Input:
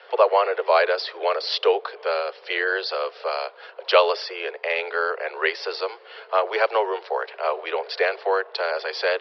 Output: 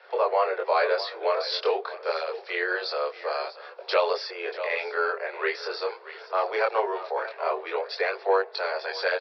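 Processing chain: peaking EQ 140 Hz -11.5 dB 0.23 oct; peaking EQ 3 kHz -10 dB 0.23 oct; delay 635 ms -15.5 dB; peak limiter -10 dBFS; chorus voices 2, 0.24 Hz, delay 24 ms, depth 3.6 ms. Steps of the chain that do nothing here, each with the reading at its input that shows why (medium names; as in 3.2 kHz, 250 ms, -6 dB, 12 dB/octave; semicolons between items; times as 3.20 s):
peaking EQ 140 Hz: input has nothing below 320 Hz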